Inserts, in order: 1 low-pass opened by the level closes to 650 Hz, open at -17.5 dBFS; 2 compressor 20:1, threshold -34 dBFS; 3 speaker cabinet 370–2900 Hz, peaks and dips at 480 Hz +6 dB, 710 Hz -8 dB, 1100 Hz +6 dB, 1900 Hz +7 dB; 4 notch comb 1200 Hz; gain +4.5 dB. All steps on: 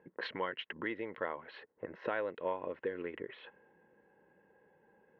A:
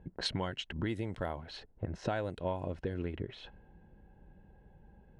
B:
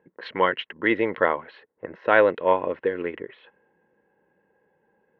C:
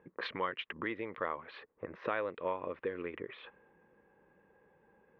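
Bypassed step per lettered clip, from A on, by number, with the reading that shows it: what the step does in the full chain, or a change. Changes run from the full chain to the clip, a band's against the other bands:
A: 3, 125 Hz band +19.0 dB; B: 2, mean gain reduction 7.0 dB; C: 4, 1 kHz band +2.0 dB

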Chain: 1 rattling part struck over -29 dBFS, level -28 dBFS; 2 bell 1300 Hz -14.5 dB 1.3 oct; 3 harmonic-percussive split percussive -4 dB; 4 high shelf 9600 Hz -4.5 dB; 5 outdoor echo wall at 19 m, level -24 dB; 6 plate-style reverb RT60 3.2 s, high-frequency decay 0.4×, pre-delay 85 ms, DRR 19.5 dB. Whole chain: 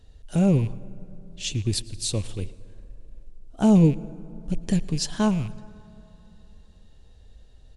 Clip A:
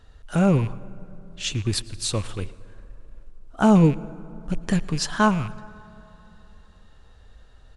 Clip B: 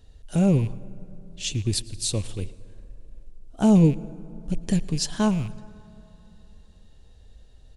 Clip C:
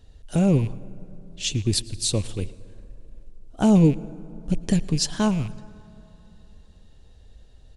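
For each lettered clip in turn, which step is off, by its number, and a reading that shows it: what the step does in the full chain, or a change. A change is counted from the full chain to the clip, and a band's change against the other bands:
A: 2, 2 kHz band +9.0 dB; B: 4, 8 kHz band +1.5 dB; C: 3, 8 kHz band +2.5 dB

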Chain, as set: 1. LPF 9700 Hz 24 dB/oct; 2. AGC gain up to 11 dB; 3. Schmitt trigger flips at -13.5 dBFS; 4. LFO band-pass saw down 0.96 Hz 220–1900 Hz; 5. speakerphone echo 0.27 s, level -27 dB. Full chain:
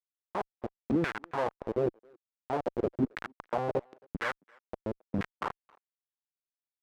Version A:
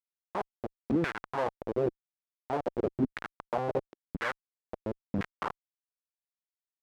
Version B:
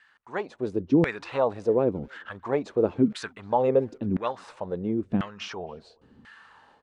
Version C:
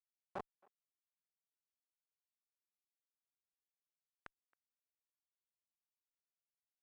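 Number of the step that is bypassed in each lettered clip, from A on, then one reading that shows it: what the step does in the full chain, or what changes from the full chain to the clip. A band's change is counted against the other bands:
5, echo-to-direct -30.0 dB to none; 3, 2 kHz band -6.0 dB; 2, crest factor change +13.0 dB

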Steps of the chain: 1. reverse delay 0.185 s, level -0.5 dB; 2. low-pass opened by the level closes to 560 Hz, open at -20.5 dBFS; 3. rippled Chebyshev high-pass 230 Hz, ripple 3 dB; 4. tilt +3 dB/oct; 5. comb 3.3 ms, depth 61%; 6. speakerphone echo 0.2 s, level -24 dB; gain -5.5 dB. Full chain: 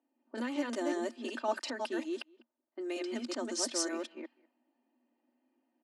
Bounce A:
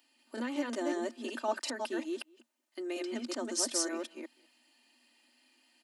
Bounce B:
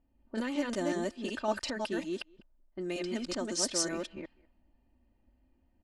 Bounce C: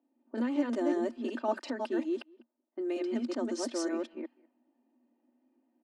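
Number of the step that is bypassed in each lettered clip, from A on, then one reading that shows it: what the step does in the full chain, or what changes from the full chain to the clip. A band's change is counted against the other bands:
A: 2, 8 kHz band +3.0 dB; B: 3, 1 kHz band -1.5 dB; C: 4, 8 kHz band -9.0 dB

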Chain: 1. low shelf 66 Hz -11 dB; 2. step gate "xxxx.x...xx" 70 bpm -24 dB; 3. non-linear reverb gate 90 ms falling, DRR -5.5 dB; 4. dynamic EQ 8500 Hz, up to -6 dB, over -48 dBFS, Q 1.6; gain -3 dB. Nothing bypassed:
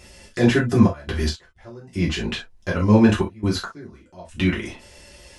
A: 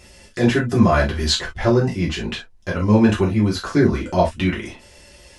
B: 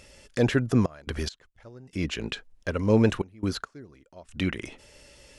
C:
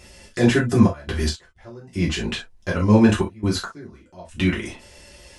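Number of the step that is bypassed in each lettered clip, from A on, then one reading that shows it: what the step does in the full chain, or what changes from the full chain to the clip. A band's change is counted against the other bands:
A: 2, 250 Hz band -3.5 dB; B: 3, momentary loudness spread change -3 LU; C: 4, 8 kHz band +3.0 dB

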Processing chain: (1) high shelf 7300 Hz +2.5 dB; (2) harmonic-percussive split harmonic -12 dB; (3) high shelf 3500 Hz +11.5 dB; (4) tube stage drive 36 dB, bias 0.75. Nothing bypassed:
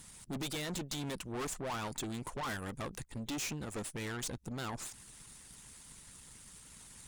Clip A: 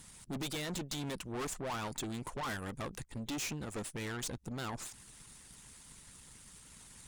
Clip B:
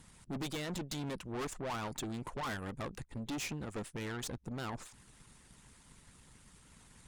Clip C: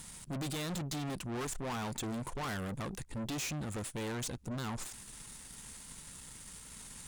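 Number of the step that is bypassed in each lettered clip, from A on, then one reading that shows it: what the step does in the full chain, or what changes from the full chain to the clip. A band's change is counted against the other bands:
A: 1, momentary loudness spread change +1 LU; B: 3, 8 kHz band -5.0 dB; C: 2, 125 Hz band +3.0 dB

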